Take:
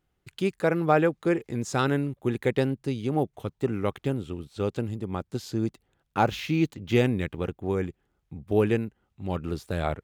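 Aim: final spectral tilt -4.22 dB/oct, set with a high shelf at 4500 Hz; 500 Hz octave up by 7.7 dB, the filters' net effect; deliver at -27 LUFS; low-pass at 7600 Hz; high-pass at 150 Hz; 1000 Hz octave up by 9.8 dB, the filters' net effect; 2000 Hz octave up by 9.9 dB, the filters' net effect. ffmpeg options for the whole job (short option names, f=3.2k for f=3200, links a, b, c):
-af "highpass=150,lowpass=7.6k,equalizer=f=500:t=o:g=7,equalizer=f=1k:t=o:g=8.5,equalizer=f=2k:t=o:g=8.5,highshelf=f=4.5k:g=5.5,volume=-5.5dB"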